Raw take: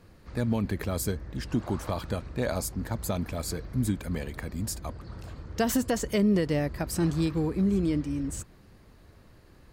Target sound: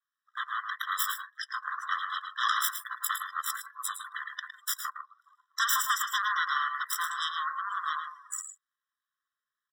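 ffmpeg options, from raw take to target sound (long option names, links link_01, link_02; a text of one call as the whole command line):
ffmpeg -i in.wav -filter_complex "[0:a]asettb=1/sr,asplit=3[link_01][link_02][link_03];[link_01]atrim=end=2.144[link_04];[link_02]atrim=start=2.14:end=2.68,asetpts=PTS-STARTPTS,afade=type=in:duration=0.004:curve=qsin,afade=type=out:start_time=0.536:duration=0.004:curve=qsin,equalizer=frequency=3200:width_type=o:width=1.1:gain=7[link_05];[link_03]atrim=start=2.676[link_06];[link_04][link_05]acrossfade=duration=0.004:curve1=hsin:curve2=qsin[link_07];[link_07][link_06]acrossfade=duration=0.004:curve1=qsin:curve2=hsin,aeval=exprs='0.178*(cos(1*acos(clip(val(0)/0.178,-1,1)))-cos(1*PI/2))+0.0794*(cos(4*acos(clip(val(0)/0.178,-1,1)))-cos(4*PI/2))+0.0447*(cos(8*acos(clip(val(0)/0.178,-1,1)))-cos(8*PI/2))':channel_layout=same,asplit=2[link_08][link_09];[link_09]aecho=0:1:110|152:0.501|0.224[link_10];[link_08][link_10]amix=inputs=2:normalize=0,adynamicequalizer=threshold=0.00398:dfrequency=6600:dqfactor=2.2:tfrequency=6600:tqfactor=2.2:attack=5:release=100:ratio=0.375:range=2.5:mode=cutabove:tftype=bell,afftdn=noise_reduction=28:noise_floor=-39,afftfilt=real='re*eq(mod(floor(b*sr/1024/1000),2),1)':imag='im*eq(mod(floor(b*sr/1024/1000),2),1)':win_size=1024:overlap=0.75,volume=3dB" out.wav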